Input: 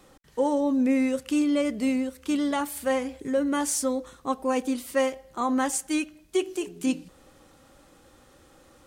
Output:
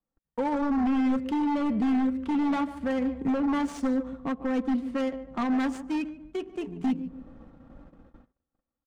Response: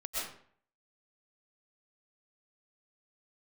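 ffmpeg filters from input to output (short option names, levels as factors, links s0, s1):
-filter_complex "[0:a]acrossover=split=500|1100[s0][s1][s2];[s0]dynaudnorm=f=120:g=13:m=2.24[s3];[s3][s1][s2]amix=inputs=3:normalize=0,highshelf=f=9200:g=5,alimiter=limit=0.106:level=0:latency=1:release=486,equalizer=f=420:t=o:w=0.55:g=-9.5,asplit=2[s4][s5];[s5]adelay=146,lowpass=f=4400:p=1,volume=0.224,asplit=2[s6][s7];[s7]adelay=146,lowpass=f=4400:p=1,volume=0.36,asplit=2[s8][s9];[s9]adelay=146,lowpass=f=4400:p=1,volume=0.36,asplit=2[s10][s11];[s11]adelay=146,lowpass=f=4400:p=1,volume=0.36[s12];[s6][s8][s10][s12]amix=inputs=4:normalize=0[s13];[s4][s13]amix=inputs=2:normalize=0,aeval=exprs='0.0531*(abs(mod(val(0)/0.0531+3,4)-2)-1)':c=same,adynamicsmooth=sensitivity=5:basefreq=1100,aecho=1:1:4.4:0.36,agate=range=0.0178:threshold=0.00251:ratio=16:detection=peak,volume=1.58"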